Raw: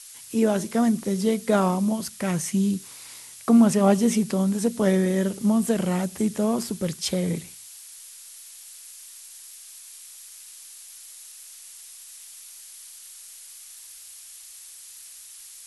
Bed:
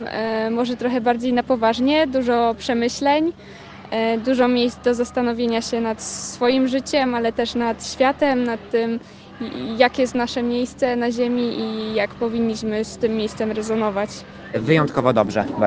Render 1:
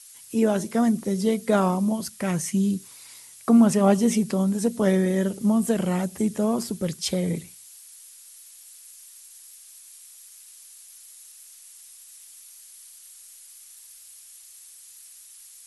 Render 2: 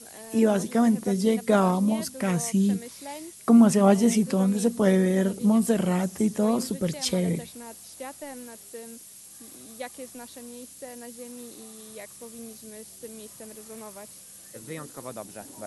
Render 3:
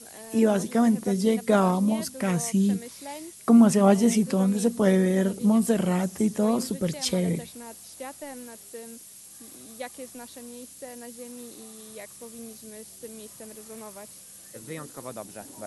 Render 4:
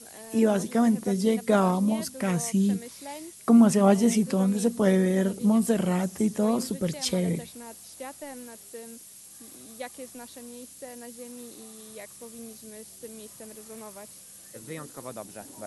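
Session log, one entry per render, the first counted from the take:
broadband denoise 6 dB, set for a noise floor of −45 dBFS
mix in bed −22 dB
no processing that can be heard
level −1 dB

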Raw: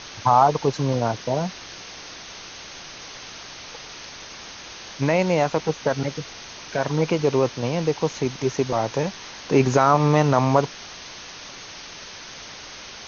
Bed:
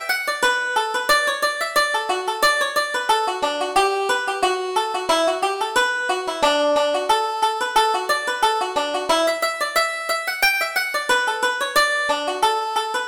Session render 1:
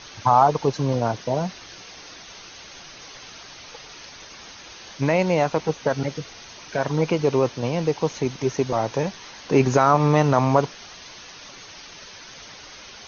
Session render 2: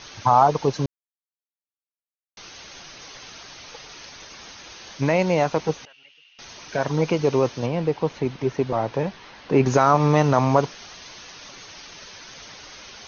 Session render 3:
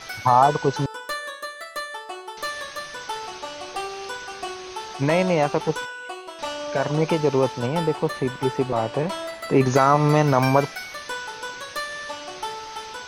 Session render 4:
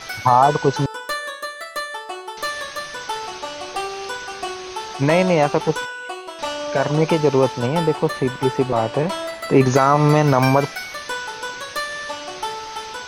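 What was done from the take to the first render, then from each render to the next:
broadband denoise 6 dB, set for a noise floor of −40 dBFS
0:00.86–0:02.37: silence; 0:05.85–0:06.39: resonant band-pass 2,800 Hz, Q 12; 0:07.66–0:09.66: high-frequency loss of the air 200 metres
mix in bed −13 dB
level +4 dB; brickwall limiter −3 dBFS, peak gain reduction 3 dB

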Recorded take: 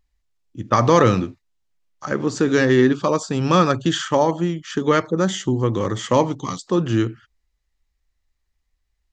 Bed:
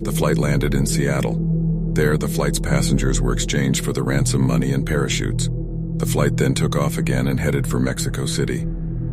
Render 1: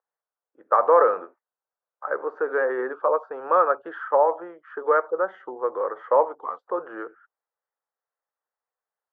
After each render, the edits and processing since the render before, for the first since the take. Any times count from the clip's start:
Chebyshev band-pass filter 470–1,500 Hz, order 3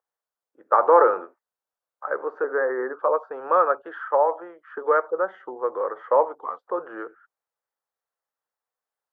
0:00.73–0:01.22: hollow resonant body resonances 360/870/1,400 Hz, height 8 dB
0:02.44–0:02.99: Chebyshev low-pass filter 2,100 Hz, order 8
0:03.82–0:04.78: high-pass filter 300 Hz 6 dB per octave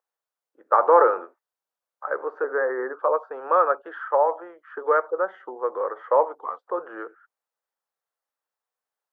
bass and treble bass −8 dB, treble −1 dB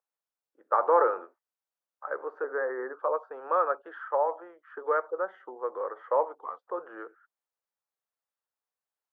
level −6.5 dB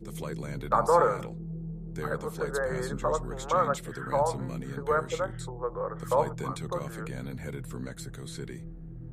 mix in bed −18 dB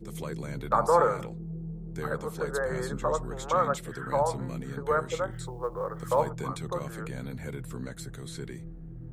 0:05.31–0:06.28: log-companded quantiser 8 bits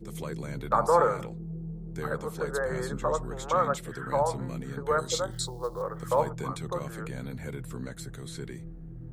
0:04.98–0:05.82: high shelf with overshoot 3,200 Hz +9.5 dB, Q 3

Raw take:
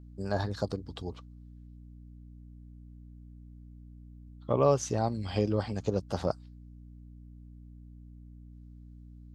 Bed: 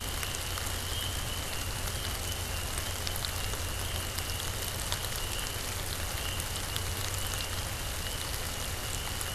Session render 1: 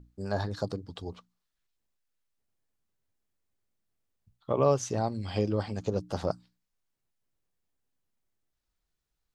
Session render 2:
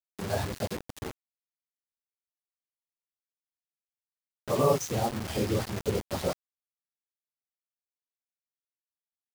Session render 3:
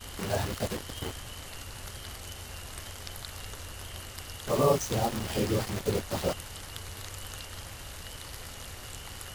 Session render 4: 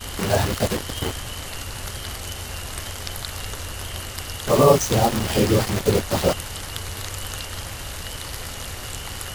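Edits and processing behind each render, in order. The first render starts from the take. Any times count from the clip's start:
mains-hum notches 60/120/180/240/300 Hz
random phases in long frames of 50 ms; bit reduction 6 bits
mix in bed −7.5 dB
level +10 dB; brickwall limiter −3 dBFS, peak gain reduction 1.5 dB

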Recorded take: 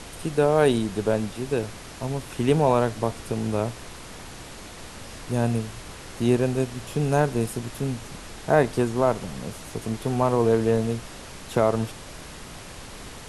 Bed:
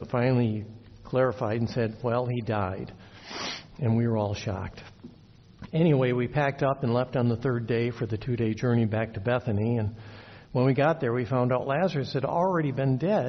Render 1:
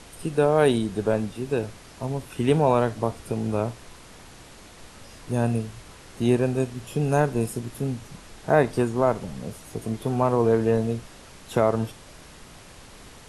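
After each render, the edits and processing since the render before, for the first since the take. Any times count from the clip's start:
noise reduction from a noise print 6 dB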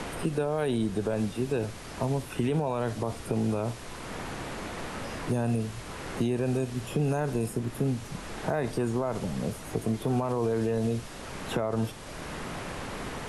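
brickwall limiter −18 dBFS, peak gain reduction 11.5 dB
multiband upward and downward compressor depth 70%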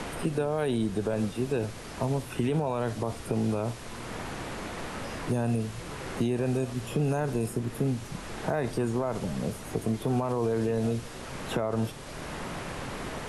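mix in bed −23.5 dB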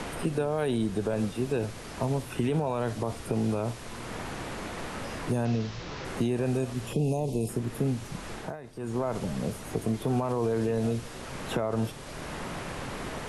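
0:05.45–0:06.05: linear delta modulator 32 kbit/s, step −37.5 dBFS
0:06.93–0:07.49: Butterworth band-reject 1,500 Hz, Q 0.75
0:08.32–0:09.01: duck −15 dB, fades 0.26 s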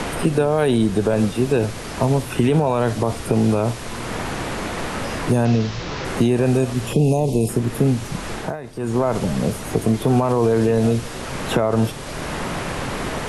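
level +10.5 dB

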